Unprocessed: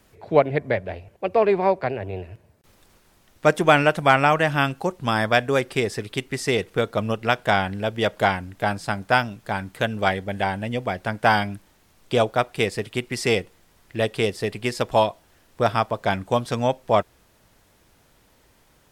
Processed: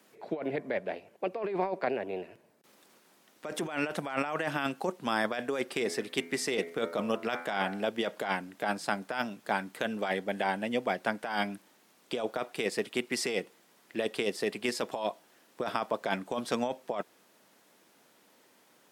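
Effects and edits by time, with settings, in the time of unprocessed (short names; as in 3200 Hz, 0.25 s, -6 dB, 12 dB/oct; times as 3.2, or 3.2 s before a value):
5.67–7.84 de-hum 84.13 Hz, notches 28
whole clip: HPF 200 Hz 24 dB/oct; negative-ratio compressor -24 dBFS, ratio -1; gain -6.5 dB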